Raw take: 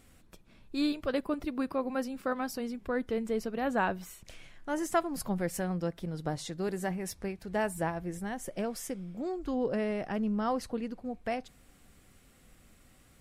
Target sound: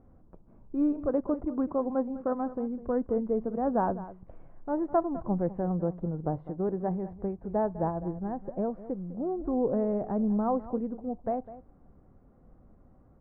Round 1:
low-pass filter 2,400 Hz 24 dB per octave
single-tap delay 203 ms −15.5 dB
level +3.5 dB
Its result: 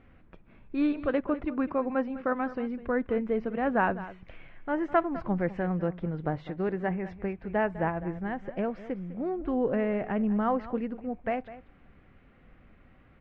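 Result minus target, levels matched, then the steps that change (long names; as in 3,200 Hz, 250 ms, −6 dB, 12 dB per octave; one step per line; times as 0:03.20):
2,000 Hz band +16.0 dB
change: low-pass filter 1,000 Hz 24 dB per octave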